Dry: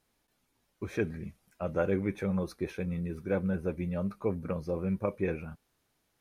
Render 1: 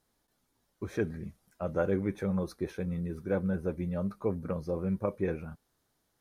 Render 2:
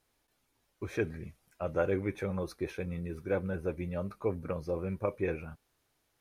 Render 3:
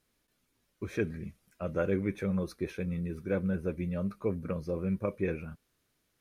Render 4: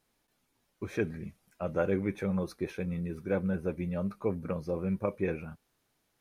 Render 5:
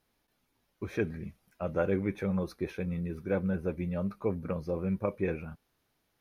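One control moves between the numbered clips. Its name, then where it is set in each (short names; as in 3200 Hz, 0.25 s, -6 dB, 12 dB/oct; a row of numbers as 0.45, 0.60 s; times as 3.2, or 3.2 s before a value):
bell, frequency: 2500, 200, 820, 64, 7900 Hz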